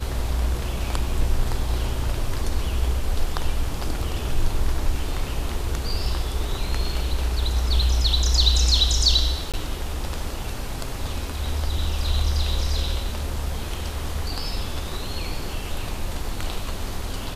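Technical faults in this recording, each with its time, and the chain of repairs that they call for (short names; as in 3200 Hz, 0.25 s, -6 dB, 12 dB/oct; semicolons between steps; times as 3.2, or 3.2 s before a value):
9.52–9.54 gap 17 ms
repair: interpolate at 9.52, 17 ms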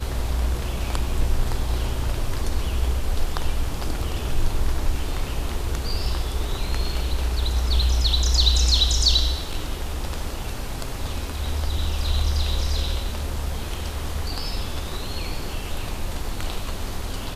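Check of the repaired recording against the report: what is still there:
none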